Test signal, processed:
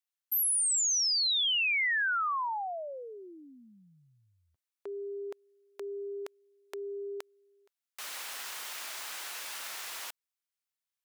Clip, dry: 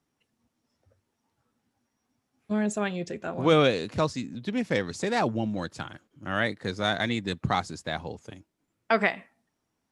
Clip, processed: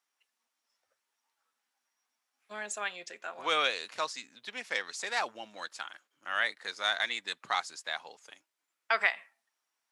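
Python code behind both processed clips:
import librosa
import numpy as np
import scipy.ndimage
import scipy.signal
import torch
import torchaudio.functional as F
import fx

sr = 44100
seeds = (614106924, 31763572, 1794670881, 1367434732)

y = scipy.signal.sosfilt(scipy.signal.butter(2, 1100.0, 'highpass', fs=sr, output='sos'), x)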